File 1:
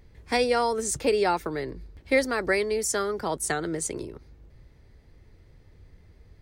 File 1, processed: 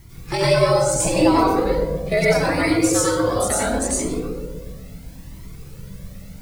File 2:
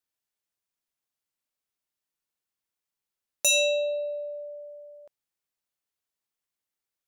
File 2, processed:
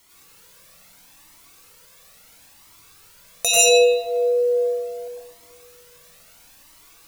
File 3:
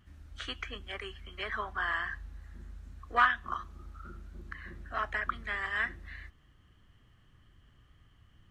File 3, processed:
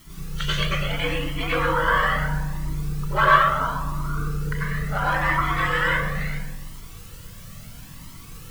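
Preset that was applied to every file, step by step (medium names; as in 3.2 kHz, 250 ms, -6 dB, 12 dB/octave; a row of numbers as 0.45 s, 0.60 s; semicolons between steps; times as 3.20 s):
band-stop 1.7 kHz, Q 17; dynamic bell 1.9 kHz, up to -4 dB, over -43 dBFS, Q 1.1; in parallel at 0 dB: compression 16:1, threshold -34 dBFS; on the sum: ring modulator 100 Hz; word length cut 10-bit, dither triangular; on a send: filtered feedback delay 123 ms, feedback 69%, low-pass 1.1 kHz, level -4.5 dB; on the sum: plate-style reverb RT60 0.51 s, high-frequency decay 0.9×, pre-delay 80 ms, DRR -5.5 dB; Shepard-style flanger rising 0.74 Hz; peak normalisation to -3 dBFS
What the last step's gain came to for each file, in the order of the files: +7.0 dB, +7.5 dB, +11.0 dB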